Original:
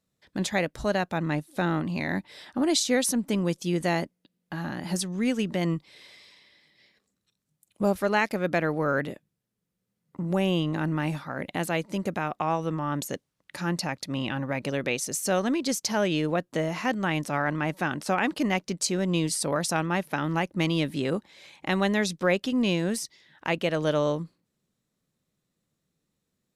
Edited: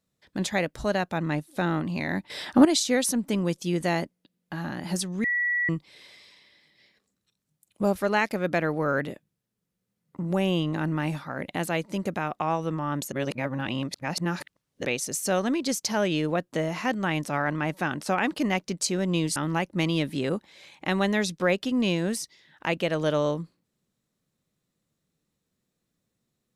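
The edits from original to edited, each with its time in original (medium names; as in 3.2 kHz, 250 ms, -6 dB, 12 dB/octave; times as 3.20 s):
2.30–2.65 s: gain +10 dB
5.24–5.69 s: bleep 1.94 kHz -22.5 dBFS
13.12–14.85 s: reverse
19.36–20.17 s: delete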